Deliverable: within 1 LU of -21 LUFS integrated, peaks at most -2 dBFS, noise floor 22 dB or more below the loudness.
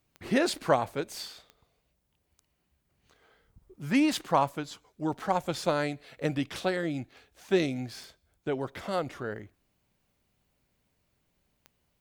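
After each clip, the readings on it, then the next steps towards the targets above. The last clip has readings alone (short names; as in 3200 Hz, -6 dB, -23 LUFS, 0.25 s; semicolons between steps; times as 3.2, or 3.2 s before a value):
clicks 5; loudness -30.5 LUFS; peak -9.5 dBFS; loudness target -21.0 LUFS
-> de-click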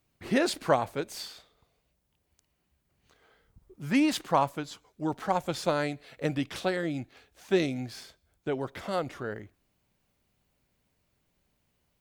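clicks 0; loudness -30.5 LUFS; peak -9.5 dBFS; loudness target -21.0 LUFS
-> gain +9.5 dB; limiter -2 dBFS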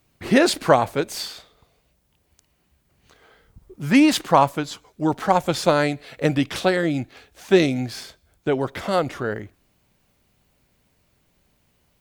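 loudness -21.0 LUFS; peak -2.0 dBFS; noise floor -66 dBFS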